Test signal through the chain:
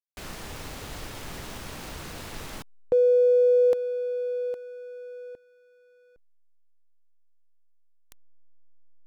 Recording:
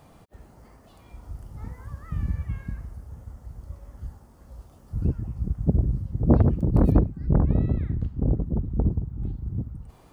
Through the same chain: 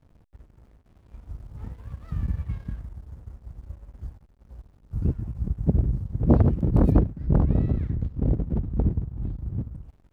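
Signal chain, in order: backlash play -42 dBFS

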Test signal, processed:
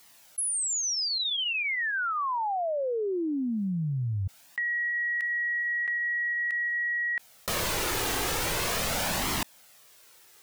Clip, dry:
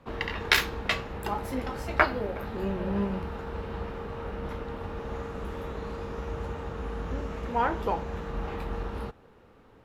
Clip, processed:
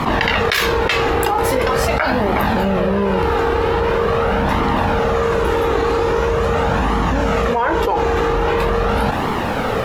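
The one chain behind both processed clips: low shelf 140 Hz -11 dB; flange 0.43 Hz, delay 0.9 ms, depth 1.7 ms, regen -27%; fast leveller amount 100%; gain +3.5 dB

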